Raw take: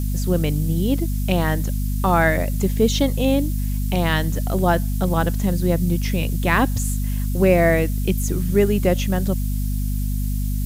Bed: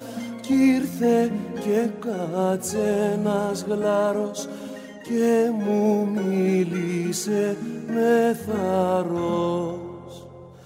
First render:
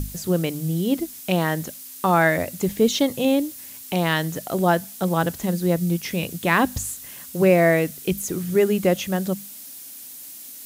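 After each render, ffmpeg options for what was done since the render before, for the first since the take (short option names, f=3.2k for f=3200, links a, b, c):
-af "bandreject=f=50:t=h:w=6,bandreject=f=100:t=h:w=6,bandreject=f=150:t=h:w=6,bandreject=f=200:t=h:w=6,bandreject=f=250:t=h:w=6"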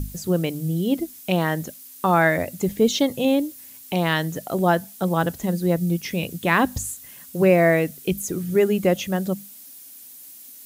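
-af "afftdn=nr=6:nf=-40"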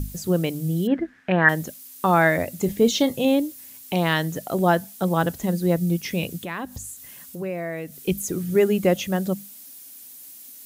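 -filter_complex "[0:a]asettb=1/sr,asplit=3[a][b][c];[a]atrim=end=0.874[d];[b]atrim=start=0.87:end=1.49,asetpts=PTS-STARTPTS,afade=t=in:d=0.004:c=qsin,afade=t=out:st=0.616:d=0.004:c=qsin,lowpass=f=1.7k:t=q:w=9.6[e];[c]atrim=start=1.486[f];[d][e]acrossfade=d=0.004:c1=hsin:c2=qsin[g];[g][f]acrossfade=d=0.004:c1=qsin:c2=hsin,asettb=1/sr,asplit=3[h][i][j];[h]atrim=end=2.534[k];[i]atrim=start=2.53:end=3.21,asetpts=PTS-STARTPTS,afade=t=in:d=0.004:c=qsin,afade=t=out:st=0.676:d=0.004:c=qsin,asplit=2[l][m];[m]adelay=30,volume=-13.5dB[n];[l][n]amix=inputs=2:normalize=0,atrim=end_sample=29988[o];[j]atrim=start=3.206[p];[k][o]acrossfade=d=0.004:c1=hsin:c2=qsin[q];[q][p]acrossfade=d=0.004:c1=qsin:c2=hsin,asettb=1/sr,asplit=3[r][s][t];[r]atrim=end=6.434[u];[s]atrim=start=6.43:end=8.08,asetpts=PTS-STARTPTS,afade=t=in:d=0.004:c=qsin,afade=t=out:st=1.646:d=0.004:c=qsin,acompressor=threshold=-37dB:ratio=2:attack=3.2:release=140:knee=1:detection=peak[v];[t]atrim=start=8.076[w];[u][v]acrossfade=d=0.004:c1=hsin:c2=qsin[x];[x][w]acrossfade=d=0.004:c1=qsin:c2=hsin"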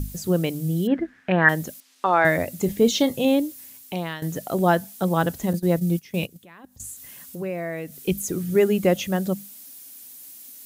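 -filter_complex "[0:a]asettb=1/sr,asplit=3[a][b][c];[a]atrim=end=1.804[d];[b]atrim=start=1.8:end=2.25,asetpts=PTS-STARTPTS,afade=t=in:d=0.004:c=qsin,afade=t=out:st=0.446:d=0.004:c=qsin,highpass=380,lowpass=4.2k[e];[c]atrim=start=2.246[f];[d][e]acrossfade=d=0.004:c1=hsin:c2=qsin[g];[g][f]acrossfade=d=0.004:c1=qsin:c2=hsin,asettb=1/sr,asplit=3[h][i][j];[h]atrim=end=5.534[k];[i]atrim=start=5.53:end=6.8,asetpts=PTS-STARTPTS,afade=t=in:d=0.004:c=qsin,afade=t=out:st=1.266:d=0.004:c=qsin,agate=range=-16dB:threshold=-28dB:ratio=16:release=100:detection=peak[l];[j]atrim=start=6.796[m];[k][l]acrossfade=d=0.004:c1=hsin:c2=qsin[n];[n][m]acrossfade=d=0.004:c1=qsin:c2=hsin,asplit=2[o][p];[o]atrim=end=4.22,asetpts=PTS-STARTPTS,afade=t=out:st=3.63:d=0.59:silence=0.149624[q];[p]atrim=start=4.22,asetpts=PTS-STARTPTS,afade=t=in:d=0.004:c=hsin:silence=0.149624[r];[q][r]concat=n=2:v=0:a=1"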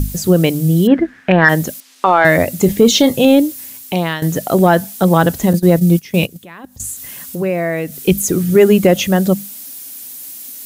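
-af "acontrast=26,alimiter=level_in=6.5dB:limit=-1dB:release=50:level=0:latency=1"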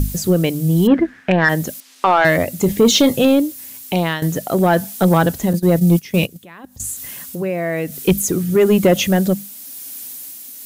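-af "tremolo=f=1:d=0.36,asoftclip=type=tanh:threshold=-3.5dB"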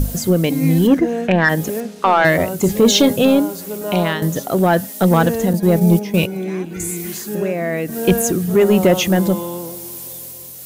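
-filter_complex "[1:a]volume=-3dB[a];[0:a][a]amix=inputs=2:normalize=0"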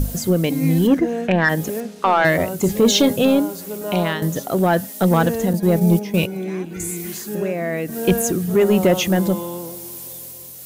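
-af "volume=-2.5dB"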